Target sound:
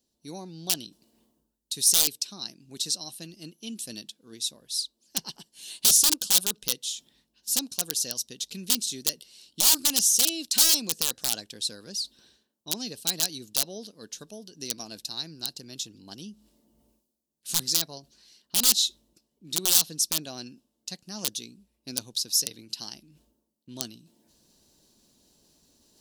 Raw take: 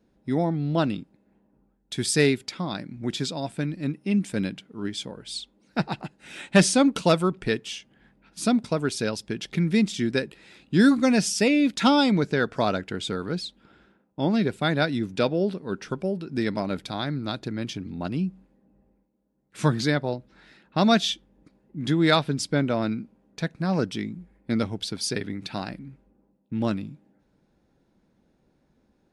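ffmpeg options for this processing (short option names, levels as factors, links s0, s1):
-af "areverse,acompressor=mode=upward:threshold=0.0126:ratio=2.5,areverse,aeval=exprs='(mod(4.73*val(0)+1,2)-1)/4.73':c=same,aexciter=amount=9.8:drive=6.4:freq=2800,asetrate=49392,aresample=44100,volume=0.158"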